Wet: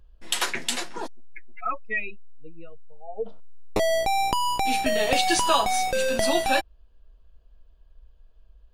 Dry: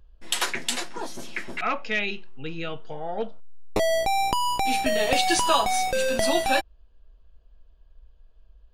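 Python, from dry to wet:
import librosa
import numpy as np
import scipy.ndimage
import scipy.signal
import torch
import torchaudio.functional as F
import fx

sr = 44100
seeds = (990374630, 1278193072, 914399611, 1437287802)

y = fx.spec_expand(x, sr, power=2.6, at=(1.06, 3.25), fade=0.02)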